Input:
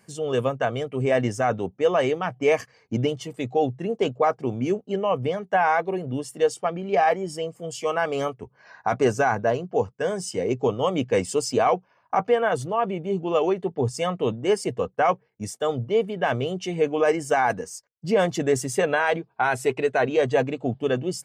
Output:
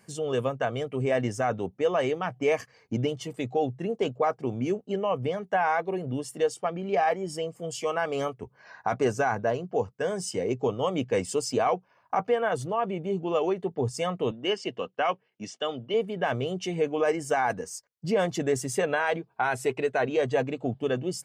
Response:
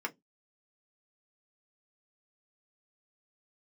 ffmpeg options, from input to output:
-filter_complex "[0:a]asplit=2[link_01][link_02];[link_02]acompressor=threshold=-29dB:ratio=6,volume=0dB[link_03];[link_01][link_03]amix=inputs=2:normalize=0,asettb=1/sr,asplit=3[link_04][link_05][link_06];[link_04]atrim=end=14.314[link_07];[link_05]atrim=start=14.31:end=15.94,asetpts=PTS-STARTPTS,afade=type=in:duration=0.004:curve=qsin,afade=type=out:start_time=1.626:duration=0.004:curve=qsin,highpass=230,equalizer=frequency=460:width_type=q:width=4:gain=-5,equalizer=frequency=840:width_type=q:width=4:gain=-3,equalizer=frequency=2900:width_type=q:width=4:gain=10,lowpass=frequency=5900:width=0.5412,lowpass=frequency=5900:width=1.3066[link_08];[link_06]atrim=start=15.936[link_09];[link_07][link_08]acrossfade=duration=0.004:curve1=hsin:curve2=qsin[link_10];[link_10][link_09]acrossfade=duration=0.004:curve1=qsin:curve2=hsin,volume=-6.5dB"

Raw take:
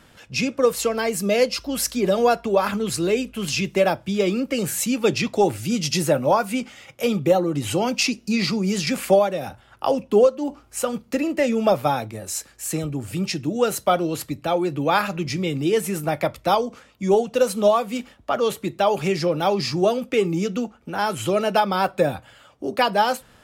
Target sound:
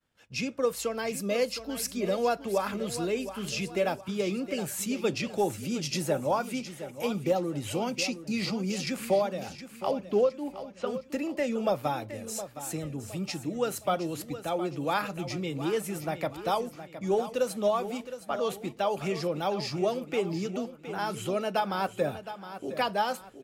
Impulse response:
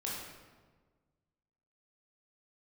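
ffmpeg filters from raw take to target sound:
-filter_complex "[0:a]asettb=1/sr,asplit=3[link_01][link_02][link_03];[link_01]atrim=end=9.914[link_04];[link_02]atrim=start=9.91:end=10.87,asetpts=PTS-STARTPTS,afade=type=in:duration=0.004:curve=qsin,afade=type=out:start_time=0.956:duration=0.004:curve=qsin,lowpass=frequency=4600:width=0.5412,lowpass=frequency=4600:width=1.3066[link_05];[link_03]atrim=start=10.866[link_06];[link_04][link_05]acrossfade=duration=0.004:curve1=hsin:curve2=qsin[link_07];[link_07][link_06]acrossfade=duration=0.004:curve1=qsin:curve2=hsin,agate=range=-33dB:threshold=-41dB:ratio=3:detection=peak,aecho=1:1:715|1430|2145|2860:0.251|0.0955|0.0363|0.0138,volume=-9dB"

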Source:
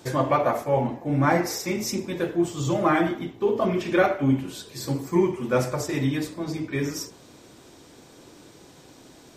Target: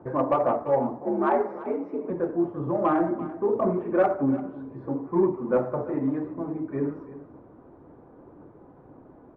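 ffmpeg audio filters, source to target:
ffmpeg -i in.wav -filter_complex "[0:a]lowpass=frequency=1200:width=0.5412,lowpass=frequency=1200:width=1.3066,acrossover=split=180[link_01][link_02];[link_01]acompressor=threshold=-47dB:ratio=4[link_03];[link_03][link_02]amix=inputs=2:normalize=0,aphaser=in_gain=1:out_gain=1:delay=4.1:decay=0.23:speed=1.9:type=sinusoidal,asettb=1/sr,asplit=3[link_04][link_05][link_06];[link_04]atrim=end=1.034[link_07];[link_05]atrim=start=1.03:end=2.1,asetpts=PTS-STARTPTS,afade=type=in:duration=0.004:curve=qsin,afade=type=out:start_time=1.066:duration=0.004:curve=qsin,afreqshift=66[link_08];[link_06]atrim=start=2.096[link_09];[link_07][link_08]acrossfade=duration=0.004:curve1=hsin:curve2=qsin[link_10];[link_10][link_09]acrossfade=duration=0.004:curve1=qsin:curve2=hsin,asoftclip=type=tanh:threshold=-11dB,aecho=1:1:340:0.158" out.wav

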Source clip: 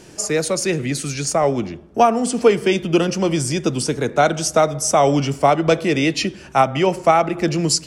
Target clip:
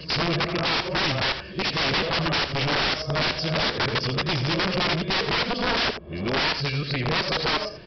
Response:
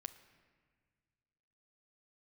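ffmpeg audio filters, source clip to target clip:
-filter_complex "[0:a]areverse,acrossover=split=340|840[link_01][link_02][link_03];[link_01]alimiter=limit=-22.5dB:level=0:latency=1:release=11[link_04];[link_04][link_02][link_03]amix=inputs=3:normalize=0,asoftclip=type=tanh:threshold=-9dB,aecho=1:1:1.8:0.47,aresample=11025,aeval=exprs='(mod(8.41*val(0)+1,2)-1)/8.41':channel_layout=same,aresample=44100,aecho=1:1:82:0.316"

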